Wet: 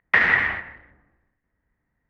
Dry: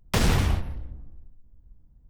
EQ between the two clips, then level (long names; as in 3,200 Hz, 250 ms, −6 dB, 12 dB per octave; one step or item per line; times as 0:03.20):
high-pass filter 1,400 Hz 6 dB per octave
low-pass with resonance 1,900 Hz, resonance Q 9.6
high-frequency loss of the air 100 metres
+6.0 dB